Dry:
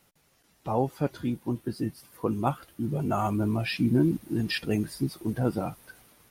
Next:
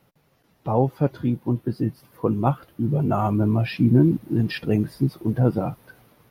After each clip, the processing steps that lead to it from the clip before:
octave-band graphic EQ 125/250/500/1,000/8,000 Hz +9/+3/+5/+3/−11 dB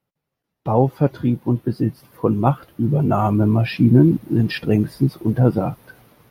noise gate with hold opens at −49 dBFS
level +4 dB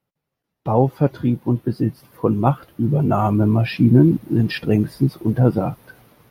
no processing that can be heard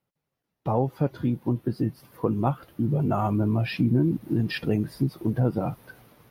downward compressor 2 to 1, threshold −20 dBFS, peak gain reduction 7.5 dB
level −3 dB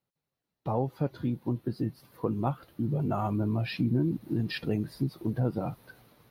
parametric band 4,100 Hz +6.5 dB 0.29 octaves
level −5 dB

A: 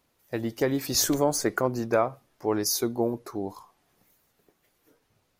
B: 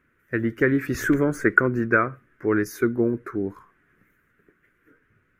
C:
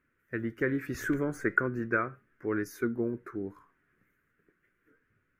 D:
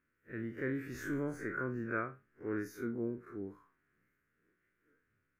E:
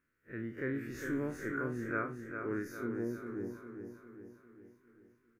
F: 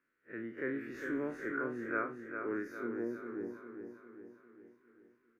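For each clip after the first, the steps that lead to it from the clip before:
drawn EQ curve 390 Hz 0 dB, 820 Hz −19 dB, 1,500 Hz +10 dB, 2,100 Hz +3 dB, 4,400 Hz −25 dB, 7,200 Hz −18 dB; level +6 dB
flanger 0.38 Hz, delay 3.3 ms, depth 4.8 ms, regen +88%; level −4.5 dB
spectrum smeared in time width 82 ms; level −4.5 dB
repeating echo 403 ms, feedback 53%, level −7 dB
three-way crossover with the lows and the highs turned down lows −16 dB, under 220 Hz, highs −13 dB, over 3,700 Hz; level +1 dB

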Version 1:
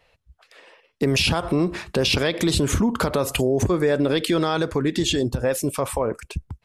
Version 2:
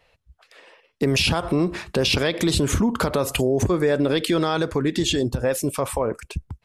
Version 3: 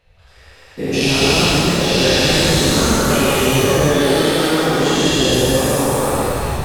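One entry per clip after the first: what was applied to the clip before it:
no processing that can be heard
every bin's largest magnitude spread in time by 480 ms; reverb with rising layers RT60 2.2 s, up +7 semitones, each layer −8 dB, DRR −5 dB; level −8.5 dB

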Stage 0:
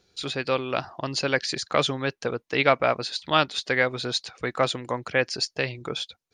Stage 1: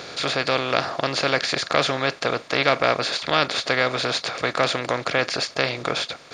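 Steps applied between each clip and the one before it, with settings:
compressor on every frequency bin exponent 0.4
level −3 dB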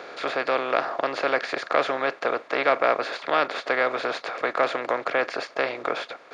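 three-way crossover with the lows and the highs turned down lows −22 dB, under 280 Hz, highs −16 dB, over 2,300 Hz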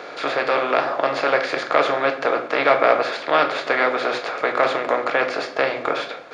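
rectangular room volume 120 cubic metres, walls mixed, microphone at 0.51 metres
level +3.5 dB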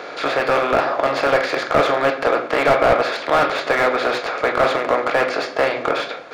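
slew-rate limiting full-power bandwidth 210 Hz
level +3 dB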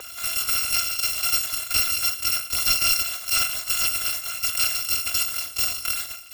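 samples in bit-reversed order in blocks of 256 samples
level −6 dB

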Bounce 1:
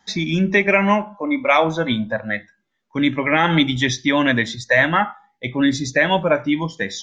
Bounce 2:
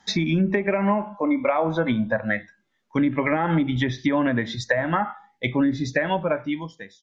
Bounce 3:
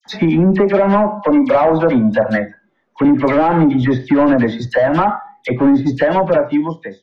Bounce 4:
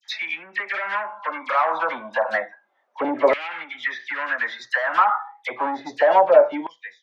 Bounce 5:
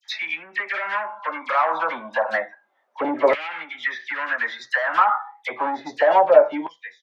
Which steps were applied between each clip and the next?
fade-out on the ending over 1.50 s; downward compressor 3 to 1, threshold −20 dBFS, peak gain reduction 8 dB; treble cut that deepens with the level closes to 1,100 Hz, closed at −17.5 dBFS; level +2 dB
tilt shelving filter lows +7.5 dB, about 1,400 Hz; mid-hump overdrive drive 19 dB, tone 1,200 Hz, clips at −3.5 dBFS; all-pass dispersion lows, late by 59 ms, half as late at 2,200 Hz; level +1 dB
auto-filter high-pass saw down 0.3 Hz 560–2,500 Hz; level −4.5 dB
double-tracking delay 13 ms −12.5 dB

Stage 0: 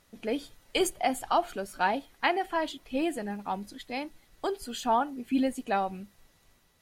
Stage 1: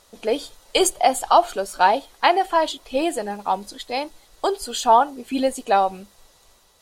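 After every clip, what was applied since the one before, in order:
octave-band graphic EQ 125/250/500/1,000/2,000/4,000/8,000 Hz −7/−5/+5/+5/−4/+5/+6 dB
level +6.5 dB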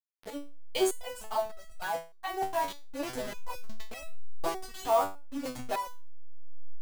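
hold until the input has moved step −21.5 dBFS
automatic gain control gain up to 14.5 dB
step-sequenced resonator 3.3 Hz 96–650 Hz
level −5.5 dB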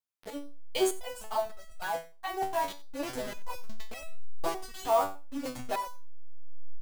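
single-tap delay 91 ms −19.5 dB

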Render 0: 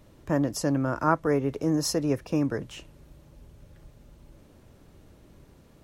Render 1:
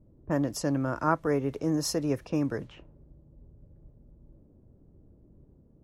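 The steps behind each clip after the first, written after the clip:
low-pass that shuts in the quiet parts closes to 330 Hz, open at −25 dBFS
level −2.5 dB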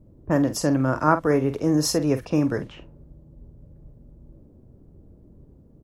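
double-tracking delay 46 ms −11 dB
level +6.5 dB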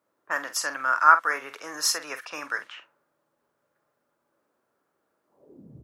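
high-pass filter sweep 1,400 Hz → 86 Hz, 0:05.26–0:05.80
level +1.5 dB

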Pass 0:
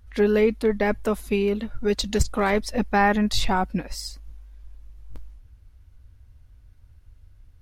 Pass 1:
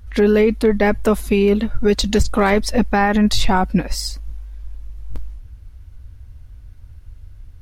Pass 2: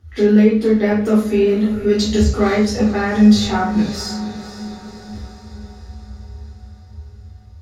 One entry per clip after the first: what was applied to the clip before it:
low-shelf EQ 200 Hz +3.5 dB; brickwall limiter −15 dBFS, peak gain reduction 10 dB; level +8.5 dB
feedback delay with all-pass diffusion 516 ms, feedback 58%, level −13.5 dB; convolution reverb RT60 0.50 s, pre-delay 3 ms, DRR −8 dB; level −17.5 dB

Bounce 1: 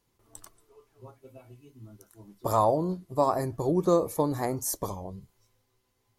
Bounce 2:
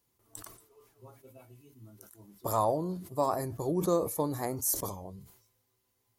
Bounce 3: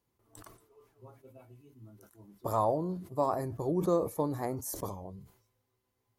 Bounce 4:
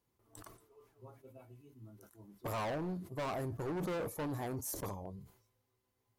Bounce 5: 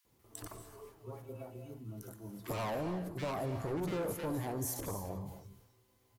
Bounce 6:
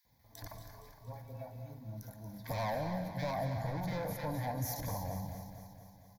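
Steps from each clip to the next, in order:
high-pass filter 44 Hz; high-shelf EQ 9,100 Hz +12 dB; level that may fall only so fast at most 90 dB per second; level −5 dB
high-shelf EQ 3,100 Hz −10.5 dB
hard clipping −33.5 dBFS, distortion −5 dB; level −1.5 dB
downward compressor 2 to 1, threshold −54 dBFS, peak gain reduction 9.5 dB; multiband delay without the direct sound highs, lows 50 ms, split 1,400 Hz; reverb whose tail is shaped and stops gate 310 ms rising, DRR 8.5 dB; level +10.5 dB
phaser with its sweep stopped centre 1,900 Hz, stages 8; repeating echo 232 ms, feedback 60%, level −10 dB; level +3.5 dB

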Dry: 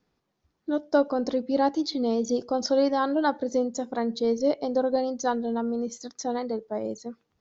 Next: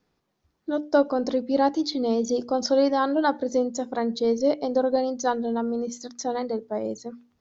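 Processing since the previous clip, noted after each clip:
mains-hum notches 60/120/180/240/300 Hz
level +2 dB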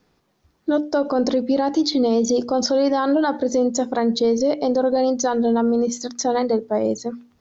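brickwall limiter −20 dBFS, peak gain reduction 11.5 dB
level +9 dB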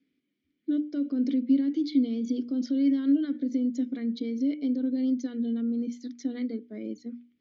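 formant filter i

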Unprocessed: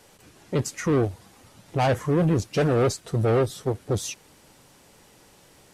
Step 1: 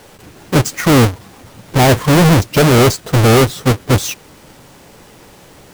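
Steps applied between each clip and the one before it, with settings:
each half-wave held at its own peak
level +8 dB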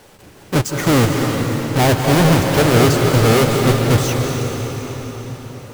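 convolution reverb RT60 5.0 s, pre-delay 152 ms, DRR 1 dB
level −4.5 dB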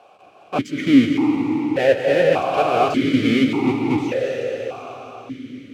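formant filter that steps through the vowels 1.7 Hz
level +8.5 dB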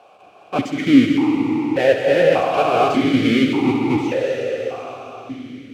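feedback echo with a high-pass in the loop 66 ms, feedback 65%, high-pass 180 Hz, level −10 dB
level +1 dB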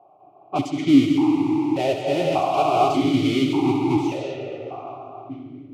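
phaser with its sweep stopped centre 330 Hz, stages 8
low-pass that shuts in the quiet parts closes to 710 Hz, open at −19.5 dBFS

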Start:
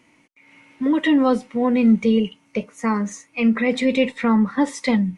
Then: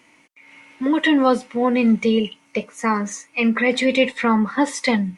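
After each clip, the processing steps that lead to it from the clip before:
low-shelf EQ 340 Hz −9.5 dB
level +5 dB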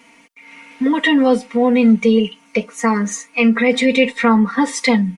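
comb filter 4.3 ms, depth 92%
in parallel at +1 dB: downward compressor, threshold −21 dBFS, peak gain reduction 13 dB
on the sum: level −3 dB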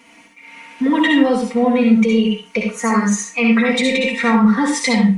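brickwall limiter −9 dBFS, peak gain reduction 7.5 dB
convolution reverb RT60 0.30 s, pre-delay 57 ms, DRR 0.5 dB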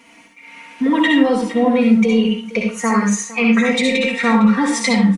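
single-tap delay 458 ms −17 dB

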